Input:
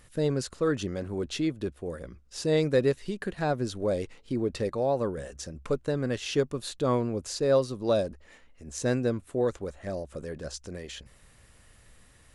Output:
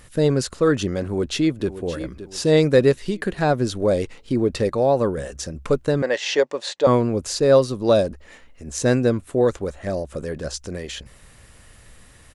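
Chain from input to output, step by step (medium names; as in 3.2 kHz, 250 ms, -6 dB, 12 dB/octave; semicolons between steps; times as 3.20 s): 1.02–1.75 s: echo throw 570 ms, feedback 40%, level -13 dB; 6.02–6.87 s: cabinet simulation 480–7200 Hz, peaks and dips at 560 Hz +9 dB, 890 Hz +8 dB, 1.3 kHz -4 dB, 1.9 kHz +8 dB; trim +8.5 dB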